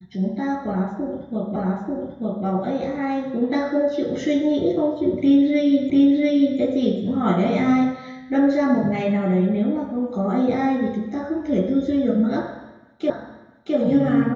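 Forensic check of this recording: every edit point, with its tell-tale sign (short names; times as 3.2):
1.56 repeat of the last 0.89 s
5.9 repeat of the last 0.69 s
13.1 repeat of the last 0.66 s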